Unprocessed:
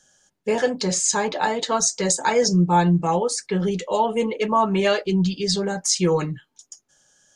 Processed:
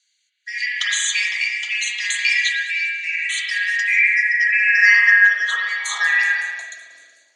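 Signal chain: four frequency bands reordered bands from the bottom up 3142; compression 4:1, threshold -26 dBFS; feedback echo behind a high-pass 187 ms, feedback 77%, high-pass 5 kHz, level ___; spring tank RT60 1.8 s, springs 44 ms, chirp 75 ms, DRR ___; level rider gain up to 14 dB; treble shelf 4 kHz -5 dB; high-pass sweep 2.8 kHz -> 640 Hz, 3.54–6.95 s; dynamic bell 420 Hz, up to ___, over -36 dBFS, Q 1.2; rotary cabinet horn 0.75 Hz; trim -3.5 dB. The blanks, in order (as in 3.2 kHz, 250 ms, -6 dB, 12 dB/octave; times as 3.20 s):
-16 dB, -1.5 dB, +7 dB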